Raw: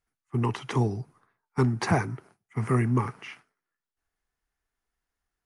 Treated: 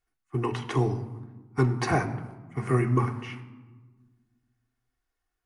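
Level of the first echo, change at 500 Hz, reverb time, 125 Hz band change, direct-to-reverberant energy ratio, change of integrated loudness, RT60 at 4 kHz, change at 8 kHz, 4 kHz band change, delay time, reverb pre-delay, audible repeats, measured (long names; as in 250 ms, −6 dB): no echo audible, +2.0 dB, 1.3 s, 0.0 dB, 2.0 dB, 0.0 dB, 0.75 s, −1.0 dB, −0.5 dB, no echo audible, 3 ms, no echo audible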